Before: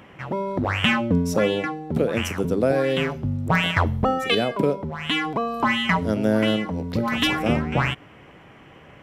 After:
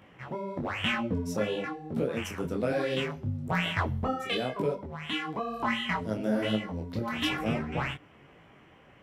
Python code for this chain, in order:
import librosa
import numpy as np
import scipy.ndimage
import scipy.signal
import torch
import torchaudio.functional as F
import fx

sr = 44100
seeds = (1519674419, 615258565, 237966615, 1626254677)

y = fx.peak_eq(x, sr, hz=fx.line((2.37, 1300.0), (3.03, 6100.0)), db=6.5, octaves=1.4, at=(2.37, 3.03), fade=0.02)
y = fx.detune_double(y, sr, cents=37)
y = F.gain(torch.from_numpy(y), -5.0).numpy()